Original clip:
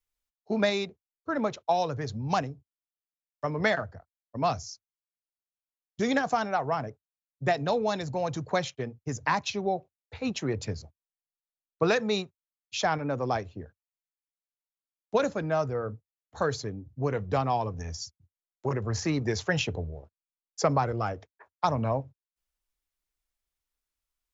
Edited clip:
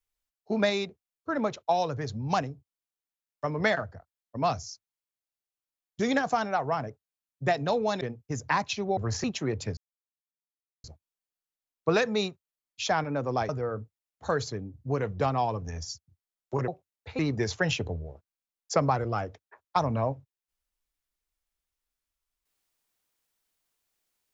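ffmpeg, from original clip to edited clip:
-filter_complex "[0:a]asplit=8[s0][s1][s2][s3][s4][s5][s6][s7];[s0]atrim=end=8.012[s8];[s1]atrim=start=8.778:end=9.742[s9];[s2]atrim=start=18.798:end=19.072[s10];[s3]atrim=start=10.248:end=10.78,asetpts=PTS-STARTPTS,afade=t=out:st=0.528:d=0.004:c=hsin,apad=pad_dur=1.07[s11];[s4]atrim=start=10.78:end=13.432,asetpts=PTS-STARTPTS,afade=t=in:d=0.004:c=hsin[s12];[s5]atrim=start=15.608:end=18.802[s13];[s6]atrim=start=9.738:end=10.252[s14];[s7]atrim=start=19.068[s15];[s8][s9]acrossfade=d=0.004:c1=hsin:c2=hsin[s16];[s16][s10]acrossfade=d=0.004:c1=hsin:c2=hsin[s17];[s11][s12]concat=n=2:v=0:a=1[s18];[s17][s18]acrossfade=d=0.004:c1=hsin:c2=hsin[s19];[s19][s13]acrossfade=d=0.004:c1=hsin:c2=hsin[s20];[s20][s14]acrossfade=d=0.004:c1=hsin:c2=hsin[s21];[s21][s15]acrossfade=d=0.004:c1=hsin:c2=hsin"

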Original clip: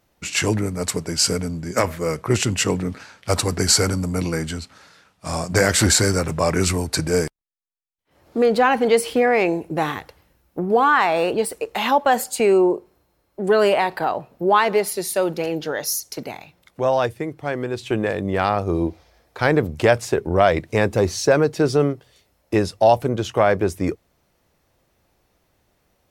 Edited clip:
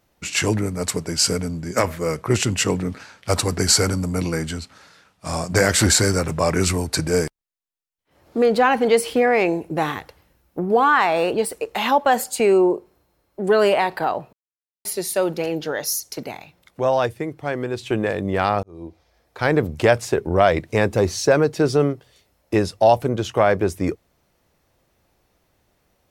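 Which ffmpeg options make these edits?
-filter_complex "[0:a]asplit=4[s0][s1][s2][s3];[s0]atrim=end=14.33,asetpts=PTS-STARTPTS,afade=t=out:st=14.326:d=0.004:c=hsin[s4];[s1]atrim=start=14.33:end=14.85,asetpts=PTS-STARTPTS,volume=0[s5];[s2]atrim=start=14.85:end=18.63,asetpts=PTS-STARTPTS,afade=t=in:d=0.004:c=hsin,afade=t=out:st=3.776:d=0.004:c=hsin[s6];[s3]atrim=start=18.63,asetpts=PTS-STARTPTS,afade=t=in:d=0.99[s7];[s4][s5][s6][s7]concat=n=4:v=0:a=1"

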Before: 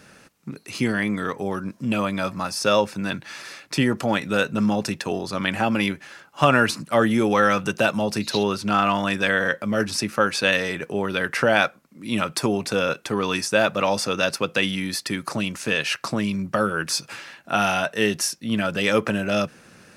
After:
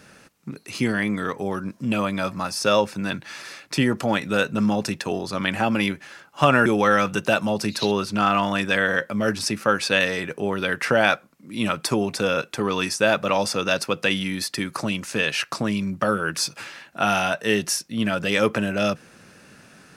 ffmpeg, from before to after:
-filter_complex "[0:a]asplit=2[s0][s1];[s0]atrim=end=6.662[s2];[s1]atrim=start=7.178[s3];[s2][s3]acrossfade=d=0.004:c1=hsin:c2=hsin"

